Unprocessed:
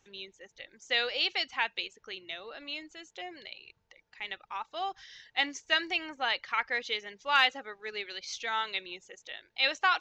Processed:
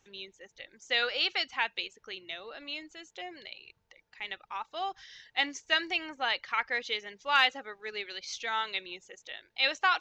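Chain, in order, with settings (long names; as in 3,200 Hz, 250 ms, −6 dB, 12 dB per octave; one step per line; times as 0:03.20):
0:01.02–0:01.42: parametric band 1,400 Hz +7.5 dB 0.43 octaves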